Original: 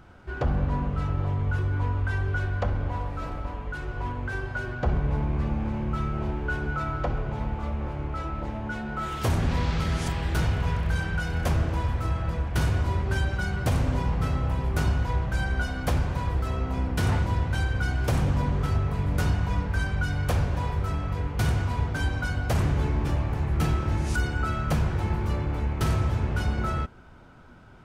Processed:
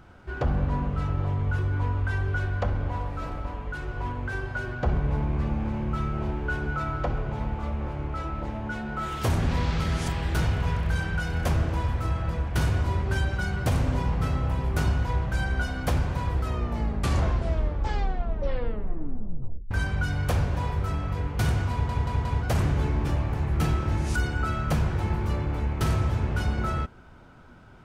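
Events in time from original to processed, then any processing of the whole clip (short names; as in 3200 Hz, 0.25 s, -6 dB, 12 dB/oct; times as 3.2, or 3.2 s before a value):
16.4 tape stop 3.31 s
21.71 stutter in place 0.18 s, 4 plays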